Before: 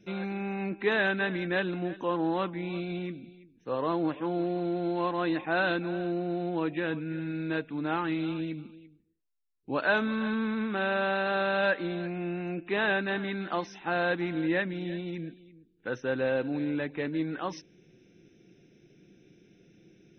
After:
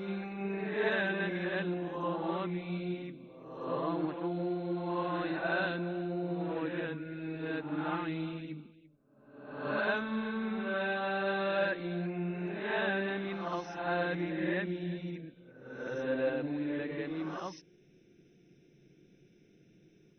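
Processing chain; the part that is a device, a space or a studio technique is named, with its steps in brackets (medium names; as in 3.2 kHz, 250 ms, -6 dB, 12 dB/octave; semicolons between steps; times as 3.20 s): reverse reverb (reverse; reverberation RT60 0.95 s, pre-delay 48 ms, DRR 0.5 dB; reverse); trim -7.5 dB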